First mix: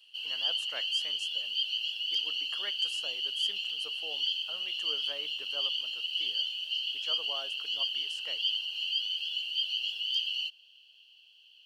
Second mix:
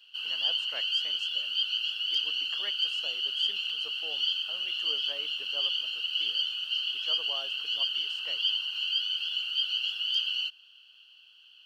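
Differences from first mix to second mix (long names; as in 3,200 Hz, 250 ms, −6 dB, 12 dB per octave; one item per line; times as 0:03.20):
speech: add high-frequency loss of the air 94 metres
background: remove phaser with its sweep stopped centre 550 Hz, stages 4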